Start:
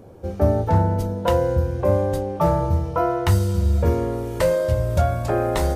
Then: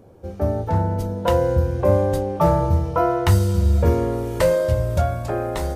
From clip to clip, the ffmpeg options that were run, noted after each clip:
-af "dynaudnorm=f=240:g=9:m=3.76,volume=0.631"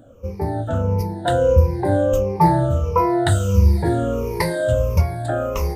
-af "afftfilt=real='re*pow(10,20/40*sin(2*PI*(0.83*log(max(b,1)*sr/1024/100)/log(2)-(-1.5)*(pts-256)/sr)))':imag='im*pow(10,20/40*sin(2*PI*(0.83*log(max(b,1)*sr/1024/100)/log(2)-(-1.5)*(pts-256)/sr)))':win_size=1024:overlap=0.75,volume=0.75"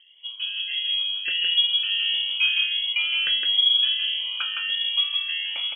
-af "aecho=1:1:163:0.631,lowpass=f=2900:t=q:w=0.5098,lowpass=f=2900:t=q:w=0.6013,lowpass=f=2900:t=q:w=0.9,lowpass=f=2900:t=q:w=2.563,afreqshift=-3400,volume=0.398"

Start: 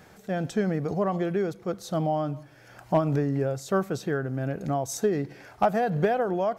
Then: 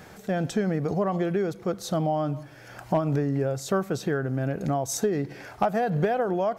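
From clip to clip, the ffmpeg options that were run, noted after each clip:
-af "acompressor=threshold=0.0282:ratio=2,volume=1.88"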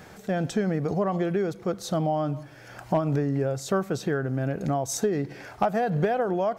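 -af "equalizer=f=12000:w=2.3:g=-3"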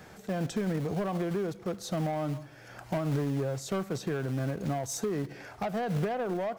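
-filter_complex "[0:a]acrossover=split=220[s0][s1];[s0]acrusher=bits=3:mode=log:mix=0:aa=0.000001[s2];[s1]asoftclip=type=tanh:threshold=0.0596[s3];[s2][s3]amix=inputs=2:normalize=0,volume=0.668"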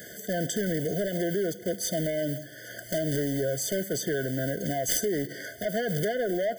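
-af "aemphasis=mode=production:type=bsi,aeval=exprs='0.299*(cos(1*acos(clip(val(0)/0.299,-1,1)))-cos(1*PI/2))+0.0944*(cos(7*acos(clip(val(0)/0.299,-1,1)))-cos(7*PI/2))':c=same,afftfilt=real='re*eq(mod(floor(b*sr/1024/730),2),0)':imag='im*eq(mod(floor(b*sr/1024/730),2),0)':win_size=1024:overlap=0.75,volume=2.11"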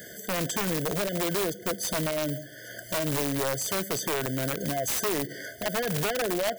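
-af "aeval=exprs='(mod(12.6*val(0)+1,2)-1)/12.6':c=same"

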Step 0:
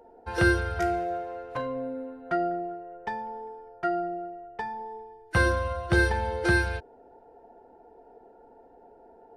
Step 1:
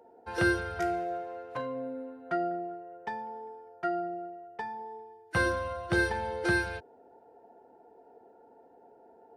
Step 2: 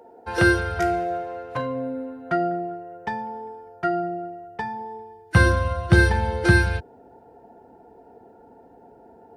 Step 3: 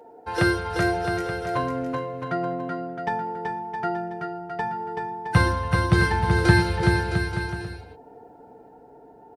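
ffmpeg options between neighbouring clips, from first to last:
-af "highpass=110,volume=0.668"
-af "asubboost=boost=3.5:cutoff=220,volume=2.66"
-af "tremolo=f=0.61:d=0.33,aecho=1:1:6.7:0.36,aecho=1:1:380|665|878.8|1039|1159:0.631|0.398|0.251|0.158|0.1"

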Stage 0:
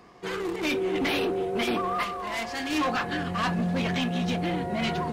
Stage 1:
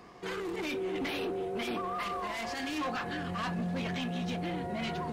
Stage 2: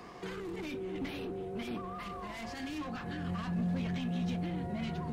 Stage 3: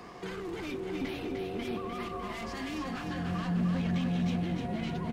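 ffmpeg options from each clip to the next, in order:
-af "alimiter=level_in=1.88:limit=0.0631:level=0:latency=1:release=35,volume=0.531"
-filter_complex "[0:a]acrossover=split=230[s0][s1];[s1]acompressor=threshold=0.00501:ratio=5[s2];[s0][s2]amix=inputs=2:normalize=0,volume=1.5"
-af "aecho=1:1:301|602|903|1204|1505|1806|2107:0.562|0.315|0.176|0.0988|0.0553|0.031|0.0173,volume=1.26"

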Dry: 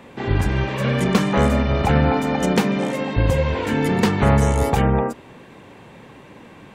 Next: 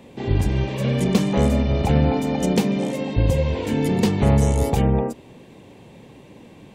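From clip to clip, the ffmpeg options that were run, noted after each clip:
-af "equalizer=f=1400:w=1.1:g=-12.5"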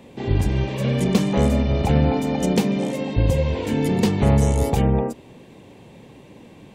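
-af anull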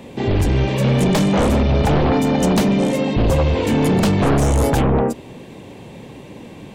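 -af "aeval=exprs='0.596*sin(PI/2*3.55*val(0)/0.596)':c=same,volume=0.447"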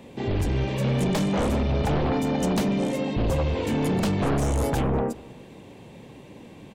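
-filter_complex "[0:a]asplit=2[s0][s1];[s1]adelay=197,lowpass=f=4400:p=1,volume=0.0708,asplit=2[s2][s3];[s3]adelay=197,lowpass=f=4400:p=1,volume=0.46,asplit=2[s4][s5];[s5]adelay=197,lowpass=f=4400:p=1,volume=0.46[s6];[s0][s2][s4][s6]amix=inputs=4:normalize=0,volume=0.398"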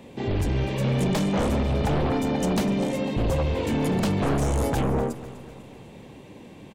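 -af "aecho=1:1:249|498|747|996|1245:0.158|0.0856|0.0462|0.025|0.0135"

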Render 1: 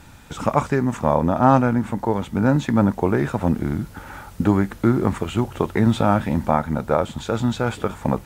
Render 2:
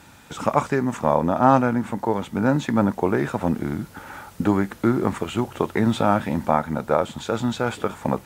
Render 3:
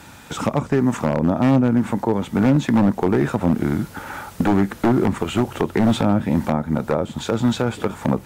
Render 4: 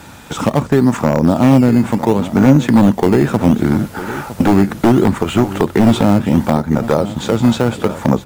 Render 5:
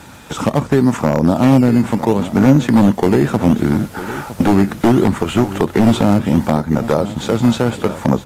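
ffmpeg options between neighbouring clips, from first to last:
-af "highpass=f=190:p=1"
-filter_complex "[0:a]acrossover=split=430[s0][s1];[s1]acompressor=threshold=0.0316:ratio=8[s2];[s0][s2]amix=inputs=2:normalize=0,aeval=exprs='0.178*(abs(mod(val(0)/0.178+3,4)-2)-1)':c=same,volume=2"
-filter_complex "[0:a]asplit=2[s0][s1];[s1]acrusher=samples=13:mix=1:aa=0.000001:lfo=1:lforange=13:lforate=0.7,volume=0.316[s2];[s0][s2]amix=inputs=2:normalize=0,aecho=1:1:958:0.2,volume=1.58"
-af "volume=0.891" -ar 32000 -c:a aac -b:a 64k

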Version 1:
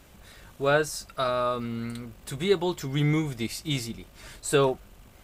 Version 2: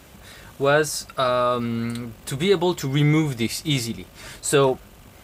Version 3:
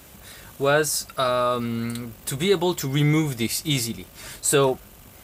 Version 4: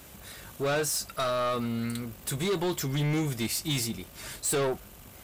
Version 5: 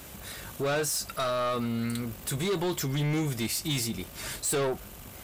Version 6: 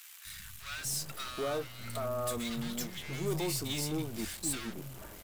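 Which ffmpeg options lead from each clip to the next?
-filter_complex "[0:a]highpass=60,asplit=2[s0][s1];[s1]alimiter=limit=0.112:level=0:latency=1:release=35,volume=1.26[s2];[s0][s2]amix=inputs=2:normalize=0"
-af "highshelf=f=8000:g=10.5,volume=0.841"
-af "asoftclip=type=tanh:threshold=0.0794,volume=0.794"
-af "alimiter=level_in=1.68:limit=0.0631:level=0:latency=1:release=94,volume=0.596,volume=1.58"
-filter_complex "[0:a]aeval=exprs='0.0596*(cos(1*acos(clip(val(0)/0.0596,-1,1)))-cos(1*PI/2))+0.0075*(cos(8*acos(clip(val(0)/0.0596,-1,1)))-cos(8*PI/2))':c=same,acrossover=split=160|1300[s0][s1][s2];[s0]adelay=250[s3];[s1]adelay=780[s4];[s3][s4][s2]amix=inputs=3:normalize=0,volume=0.562"

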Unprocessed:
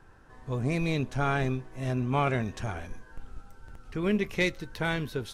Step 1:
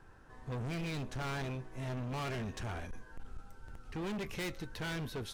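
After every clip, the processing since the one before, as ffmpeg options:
-af "volume=47.3,asoftclip=hard,volume=0.0211,volume=0.75"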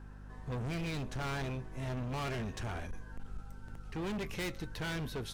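-af "aeval=exprs='val(0)+0.00355*(sin(2*PI*50*n/s)+sin(2*PI*2*50*n/s)/2+sin(2*PI*3*50*n/s)/3+sin(2*PI*4*50*n/s)/4+sin(2*PI*5*50*n/s)/5)':c=same,volume=1.12"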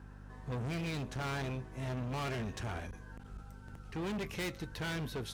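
-af "highpass=44"

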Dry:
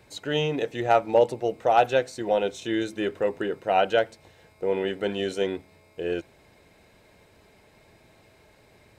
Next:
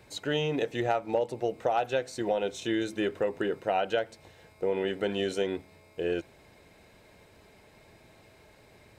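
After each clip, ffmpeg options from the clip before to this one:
-af "acompressor=threshold=0.0631:ratio=6"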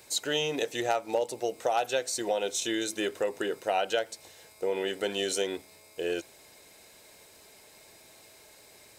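-af "bass=f=250:g=-10,treble=f=4000:g=15"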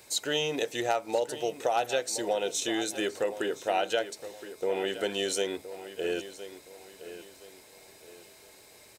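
-filter_complex "[0:a]asplit=2[s0][s1];[s1]adelay=1018,lowpass=f=4400:p=1,volume=0.224,asplit=2[s2][s3];[s3]adelay=1018,lowpass=f=4400:p=1,volume=0.37,asplit=2[s4][s5];[s5]adelay=1018,lowpass=f=4400:p=1,volume=0.37,asplit=2[s6][s7];[s7]adelay=1018,lowpass=f=4400:p=1,volume=0.37[s8];[s0][s2][s4][s6][s8]amix=inputs=5:normalize=0"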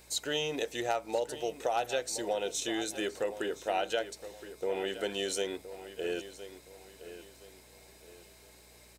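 -af "aeval=exprs='val(0)+0.00112*(sin(2*PI*60*n/s)+sin(2*PI*2*60*n/s)/2+sin(2*PI*3*60*n/s)/3+sin(2*PI*4*60*n/s)/4+sin(2*PI*5*60*n/s)/5)':c=same,volume=0.668"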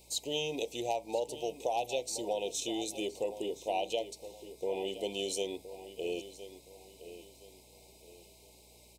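-af "asuperstop=centerf=1500:order=8:qfactor=1.1,volume=0.841"

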